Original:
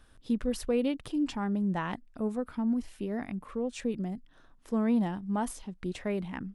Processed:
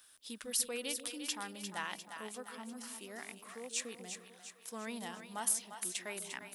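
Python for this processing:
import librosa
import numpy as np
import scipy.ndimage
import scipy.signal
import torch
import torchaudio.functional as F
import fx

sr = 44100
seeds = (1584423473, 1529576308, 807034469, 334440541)

y = np.diff(x, prepend=0.0)
y = fx.echo_split(y, sr, split_hz=570.0, low_ms=146, high_ms=350, feedback_pct=52, wet_db=-8.0)
y = y * 10.0 ** (10.0 / 20.0)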